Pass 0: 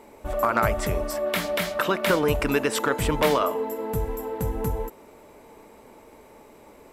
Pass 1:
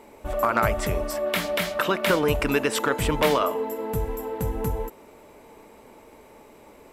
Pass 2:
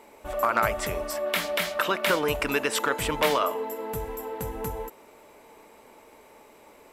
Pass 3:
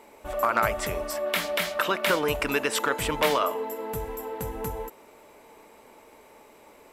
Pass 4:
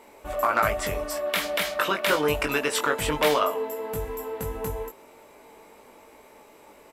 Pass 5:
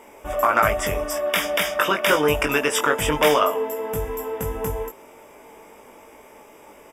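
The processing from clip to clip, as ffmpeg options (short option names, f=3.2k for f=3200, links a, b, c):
-af "equalizer=f=2.8k:t=o:w=0.77:g=2"
-af "lowshelf=f=360:g=-9.5"
-af anull
-filter_complex "[0:a]asplit=2[a][b];[b]adelay=20,volume=-5dB[c];[a][c]amix=inputs=2:normalize=0"
-af "asuperstop=centerf=4200:order=8:qfactor=4.1,volume=4.5dB"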